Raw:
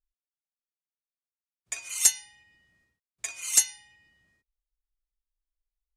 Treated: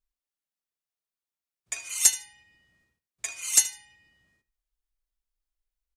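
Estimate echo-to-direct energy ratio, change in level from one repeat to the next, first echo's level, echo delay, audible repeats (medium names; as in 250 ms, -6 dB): -17.0 dB, -16.0 dB, -17.0 dB, 77 ms, 2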